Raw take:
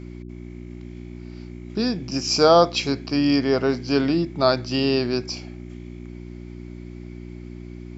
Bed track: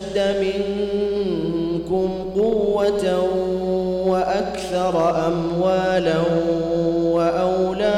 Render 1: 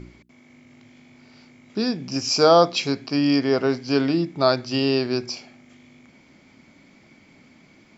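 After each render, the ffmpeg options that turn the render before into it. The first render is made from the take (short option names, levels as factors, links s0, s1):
-af "bandreject=f=60:t=h:w=4,bandreject=f=120:t=h:w=4,bandreject=f=180:t=h:w=4,bandreject=f=240:t=h:w=4,bandreject=f=300:t=h:w=4,bandreject=f=360:t=h:w=4"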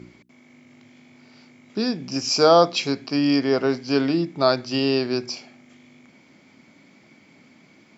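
-af "highpass=120"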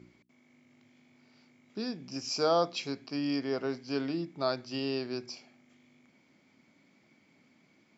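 -af "volume=0.251"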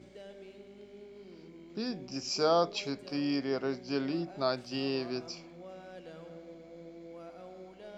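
-filter_complex "[1:a]volume=0.0335[s0];[0:a][s0]amix=inputs=2:normalize=0"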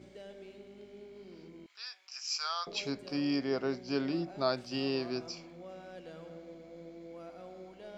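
-filter_complex "[0:a]asettb=1/sr,asplit=3[s0][s1][s2];[s0]atrim=end=1.664[s3];[s1]atrim=start=1.66:end=2.67,asetpts=PTS-STARTPTS,afade=t=in:d=0.004:c=qsin,afade=t=out:st=1.006:d=0.004:c=qsin,highpass=f=1200:w=0.5412,highpass=f=1200:w=1.3066[s4];[s2]atrim=start=2.666[s5];[s3][s4]acrossfade=d=0.004:c1=hsin:c2=qsin[s6];[s6][s5]acrossfade=d=0.004:c1=qsin:c2=hsin"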